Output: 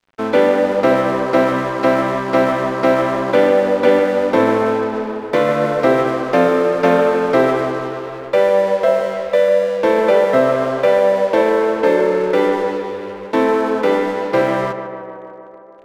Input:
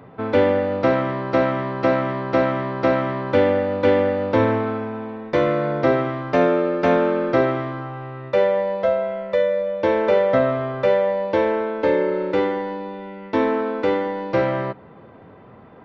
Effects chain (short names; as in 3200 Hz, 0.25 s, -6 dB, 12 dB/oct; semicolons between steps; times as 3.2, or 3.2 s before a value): HPF 150 Hz 24 dB/oct; notches 50/100/150/200/250/300/350 Hz; in parallel at -2 dB: limiter -16 dBFS, peak gain reduction 10.5 dB; on the sum: crossover distortion -34 dBFS; tape echo 0.15 s, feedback 80%, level -8.5 dB, low-pass 2400 Hz; gain +2 dB